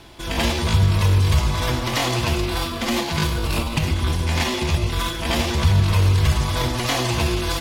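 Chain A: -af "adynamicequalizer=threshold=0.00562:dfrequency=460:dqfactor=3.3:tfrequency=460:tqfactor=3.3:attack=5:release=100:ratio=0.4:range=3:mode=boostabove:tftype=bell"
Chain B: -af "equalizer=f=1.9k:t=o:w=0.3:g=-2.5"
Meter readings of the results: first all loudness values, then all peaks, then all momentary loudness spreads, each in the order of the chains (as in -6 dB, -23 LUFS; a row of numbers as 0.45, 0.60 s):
-20.5, -21.0 LUFS; -6.5, -7.0 dBFS; 5, 6 LU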